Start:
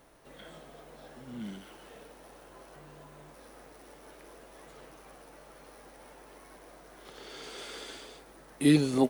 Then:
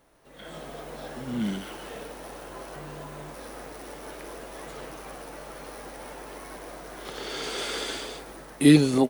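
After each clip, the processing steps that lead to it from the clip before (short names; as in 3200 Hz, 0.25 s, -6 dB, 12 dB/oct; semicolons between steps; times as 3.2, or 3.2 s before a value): AGC gain up to 15 dB; gain -3.5 dB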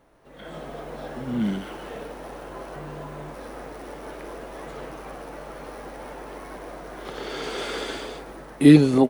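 high shelf 3100 Hz -10.5 dB; gain +4 dB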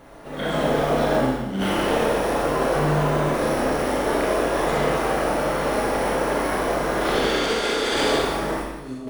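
negative-ratio compressor -35 dBFS, ratio -1; Schroeder reverb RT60 1.1 s, combs from 27 ms, DRR -2 dB; gain +6 dB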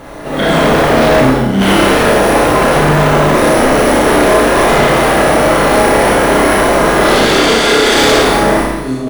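sine folder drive 10 dB, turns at -7.5 dBFS; early reflections 30 ms -8 dB, 60 ms -8.5 dB; gain +1 dB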